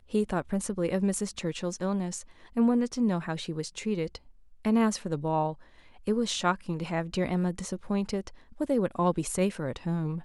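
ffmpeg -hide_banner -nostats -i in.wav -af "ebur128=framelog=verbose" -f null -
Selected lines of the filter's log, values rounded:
Integrated loudness:
  I:         -29.8 LUFS
  Threshold: -40.0 LUFS
Loudness range:
  LRA:         1.5 LU
  Threshold: -50.0 LUFS
  LRA low:   -30.8 LUFS
  LRA high:  -29.3 LUFS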